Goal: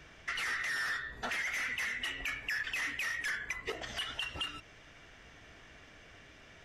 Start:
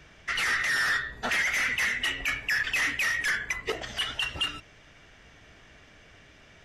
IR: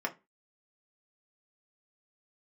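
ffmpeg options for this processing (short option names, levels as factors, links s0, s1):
-filter_complex "[0:a]acompressor=threshold=0.0158:ratio=2.5,asplit=2[s0][s1];[1:a]atrim=start_sample=2205[s2];[s1][s2]afir=irnorm=-1:irlink=0,volume=0.119[s3];[s0][s3]amix=inputs=2:normalize=0,volume=0.75"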